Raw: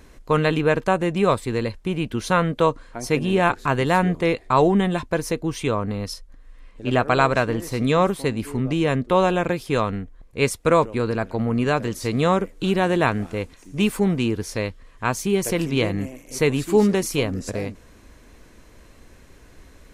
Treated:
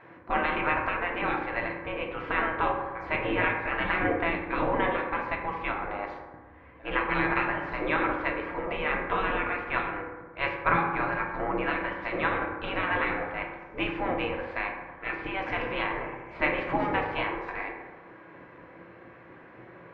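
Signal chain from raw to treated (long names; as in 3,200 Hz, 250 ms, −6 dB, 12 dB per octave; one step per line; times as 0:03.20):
gate on every frequency bin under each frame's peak −15 dB weak
low-pass filter 2,200 Hz 24 dB per octave
convolution reverb RT60 1.4 s, pre-delay 3 ms, DRR −0.5 dB
level +3.5 dB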